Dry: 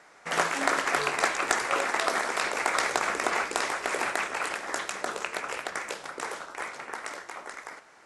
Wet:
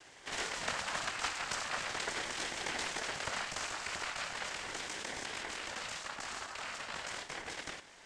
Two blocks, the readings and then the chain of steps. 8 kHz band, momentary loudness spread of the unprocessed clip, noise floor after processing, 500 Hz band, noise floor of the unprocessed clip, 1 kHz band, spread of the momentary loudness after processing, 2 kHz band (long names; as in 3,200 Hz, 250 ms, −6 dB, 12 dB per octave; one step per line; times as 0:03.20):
−6.0 dB, 12 LU, −57 dBFS, −13.0 dB, −55 dBFS, −12.0 dB, 5 LU, −9.5 dB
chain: lower of the sound and its delayed copy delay 0.83 ms
spectral tilt +2 dB per octave
cochlear-implant simulation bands 8
in parallel at −1 dB: compressor whose output falls as the input rises −41 dBFS, ratio −1
on the sum: ring modulator whose carrier an LFO sweeps 430 Hz, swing 45%, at 0.39 Hz
level −7.5 dB